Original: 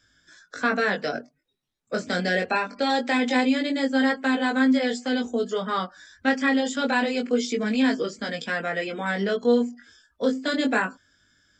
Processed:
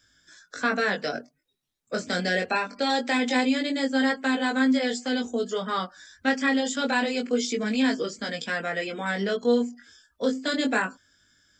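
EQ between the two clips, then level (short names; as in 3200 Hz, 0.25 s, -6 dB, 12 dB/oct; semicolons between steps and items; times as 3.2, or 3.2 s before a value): high shelf 4700 Hz +7 dB; -2.0 dB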